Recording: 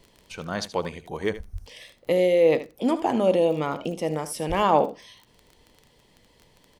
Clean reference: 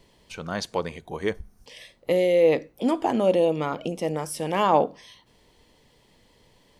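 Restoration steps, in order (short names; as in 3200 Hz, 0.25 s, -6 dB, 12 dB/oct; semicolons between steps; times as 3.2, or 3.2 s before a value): de-click; 1.52–1.64 HPF 140 Hz 24 dB/oct; 4.48–4.6 HPF 140 Hz 24 dB/oct; inverse comb 77 ms -14 dB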